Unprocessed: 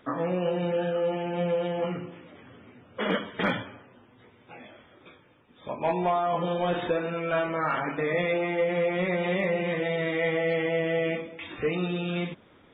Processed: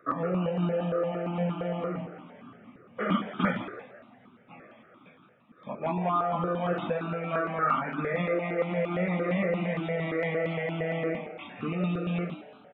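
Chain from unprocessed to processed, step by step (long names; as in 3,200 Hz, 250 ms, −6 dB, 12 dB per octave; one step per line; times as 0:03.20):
high-pass filter 150 Hz
hollow resonant body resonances 220/1,200 Hz, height 15 dB, ringing for 20 ms
echo with shifted repeats 167 ms, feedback 38%, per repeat +130 Hz, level −13.5 dB
step-sequenced phaser 8.7 Hz 880–1,900 Hz
level −4.5 dB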